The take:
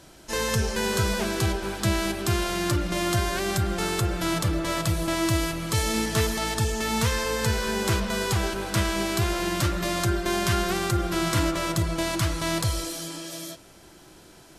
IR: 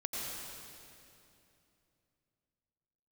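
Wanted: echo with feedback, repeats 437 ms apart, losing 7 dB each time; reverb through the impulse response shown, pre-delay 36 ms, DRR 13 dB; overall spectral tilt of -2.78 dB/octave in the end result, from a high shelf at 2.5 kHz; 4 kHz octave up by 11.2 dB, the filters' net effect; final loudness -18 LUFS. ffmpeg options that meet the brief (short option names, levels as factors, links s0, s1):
-filter_complex "[0:a]highshelf=f=2500:g=9,equalizer=f=4000:t=o:g=6,aecho=1:1:437|874|1311|1748|2185:0.447|0.201|0.0905|0.0407|0.0183,asplit=2[s0][s1];[1:a]atrim=start_sample=2205,adelay=36[s2];[s1][s2]afir=irnorm=-1:irlink=0,volume=0.158[s3];[s0][s3]amix=inputs=2:normalize=0,volume=1.12"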